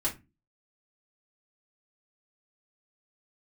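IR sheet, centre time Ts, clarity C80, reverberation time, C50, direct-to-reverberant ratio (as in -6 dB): 15 ms, 22.0 dB, 0.25 s, 13.5 dB, -6.0 dB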